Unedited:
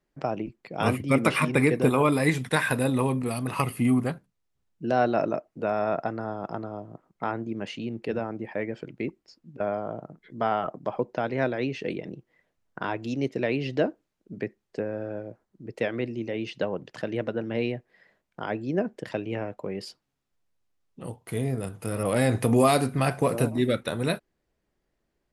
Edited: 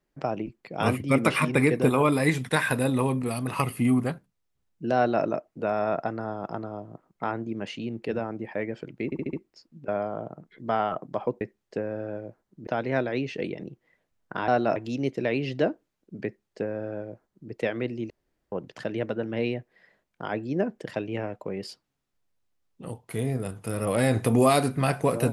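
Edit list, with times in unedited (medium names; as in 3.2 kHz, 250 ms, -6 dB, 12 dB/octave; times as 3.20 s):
4.96–5.24 s: copy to 12.94 s
9.05 s: stutter 0.07 s, 5 plays
14.43–15.69 s: copy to 11.13 s
16.28–16.70 s: room tone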